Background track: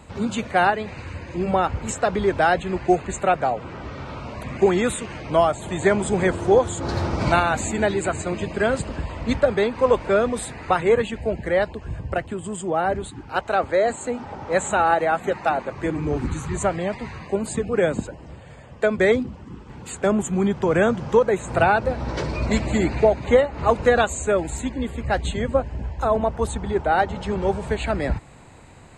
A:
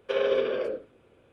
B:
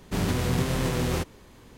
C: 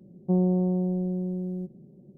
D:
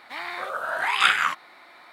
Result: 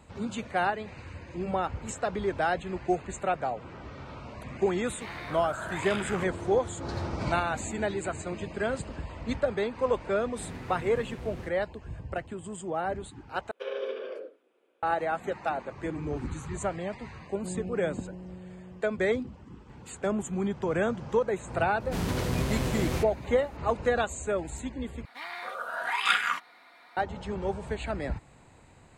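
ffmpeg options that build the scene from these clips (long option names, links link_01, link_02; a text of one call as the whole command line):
ffmpeg -i bed.wav -i cue0.wav -i cue1.wav -i cue2.wav -i cue3.wav -filter_complex "[4:a]asplit=2[link_01][link_02];[2:a]asplit=2[link_03][link_04];[0:a]volume=-9dB[link_05];[link_01]acompressor=threshold=-24dB:ratio=6:attack=3.2:release=140:knee=1:detection=peak[link_06];[link_03]highshelf=frequency=4400:gain=-11.5[link_07];[1:a]highpass=frequency=290:width=0.5412,highpass=frequency=290:width=1.3066[link_08];[link_02]aecho=1:1:4.2:0.47[link_09];[link_05]asplit=3[link_10][link_11][link_12];[link_10]atrim=end=13.514[link_13];[link_08]atrim=end=1.32,asetpts=PTS-STARTPTS,volume=-9dB[link_14];[link_11]atrim=start=14.826:end=25.054[link_15];[link_09]atrim=end=1.92,asetpts=PTS-STARTPTS,volume=-6.5dB[link_16];[link_12]atrim=start=26.966[link_17];[link_06]atrim=end=1.92,asetpts=PTS-STARTPTS,volume=-8.5dB,afade=type=in:duration=0.004:curve=hsin,afade=type=out:start_time=1.916:duration=0.004:curve=hsin,adelay=4900[link_18];[link_07]atrim=end=1.77,asetpts=PTS-STARTPTS,volume=-16dB,afade=type=in:duration=0.004:curve=hsin,afade=type=out:start_time=1.766:duration=0.004:curve=hsin,adelay=452466S[link_19];[3:a]atrim=end=2.17,asetpts=PTS-STARTPTS,volume=-15dB,afade=type=in:duration=0.004:curve=hsin,afade=type=out:start_time=2.166:duration=0.004:curve=hsin,adelay=17150[link_20];[link_04]atrim=end=1.77,asetpts=PTS-STARTPTS,volume=-4.5dB,afade=type=in:duration=0.004:curve=hsin,afade=type=out:start_time=1.766:duration=0.004:curve=hsin,adelay=961380S[link_21];[link_13][link_14]acrossfade=duration=0.004:curve1=hsin:curve2=hsin[link_22];[link_22][link_15]acrossfade=duration=0.004:curve1=hsin:curve2=hsin[link_23];[link_23][link_16]acrossfade=duration=0.004:curve1=hsin:curve2=hsin[link_24];[link_24][link_17]acrossfade=duration=0.004:curve1=hsin:curve2=hsin[link_25];[link_25][link_18][link_19][link_20][link_21]amix=inputs=5:normalize=0" out.wav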